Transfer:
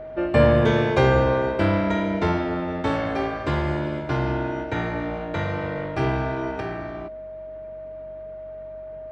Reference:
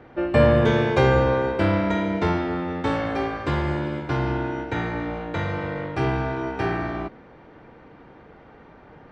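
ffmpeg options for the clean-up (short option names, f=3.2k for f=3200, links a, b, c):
-af "bandreject=f=47.5:t=h:w=4,bandreject=f=95:t=h:w=4,bandreject=f=142.5:t=h:w=4,bandreject=f=190:t=h:w=4,bandreject=f=630:w=30,asetnsamples=n=441:p=0,asendcmd='6.6 volume volume 6.5dB',volume=0dB"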